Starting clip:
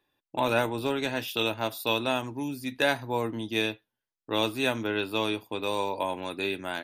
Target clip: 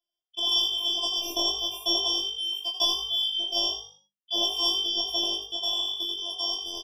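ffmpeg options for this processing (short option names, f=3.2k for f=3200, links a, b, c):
-filter_complex "[0:a]afftfilt=real='real(if(lt(b,272),68*(eq(floor(b/68),0)*2+eq(floor(b/68),1)*3+eq(floor(b/68),2)*0+eq(floor(b/68),3)*1)+mod(b,68),b),0)':imag='imag(if(lt(b,272),68*(eq(floor(b/68),0)*2+eq(floor(b/68),1)*3+eq(floor(b/68),2)*0+eq(floor(b/68),3)*1)+mod(b,68),b),0)':win_size=2048:overlap=0.75,agate=range=-13dB:threshold=-37dB:ratio=16:detection=peak,afftfilt=real='hypot(re,im)*cos(PI*b)':imag='0':win_size=512:overlap=0.75,asplit=2[a][b];[b]adelay=21,volume=-4.5dB[c];[a][c]amix=inputs=2:normalize=0,asplit=2[d][e];[e]asplit=4[f][g][h][i];[f]adelay=85,afreqshift=50,volume=-9dB[j];[g]adelay=170,afreqshift=100,volume=-18.9dB[k];[h]adelay=255,afreqshift=150,volume=-28.8dB[l];[i]adelay=340,afreqshift=200,volume=-38.7dB[m];[j][k][l][m]amix=inputs=4:normalize=0[n];[d][n]amix=inputs=2:normalize=0,afftfilt=real='re*eq(mod(floor(b*sr/1024/1200),2),0)':imag='im*eq(mod(floor(b*sr/1024/1200),2),0)':win_size=1024:overlap=0.75,volume=4.5dB"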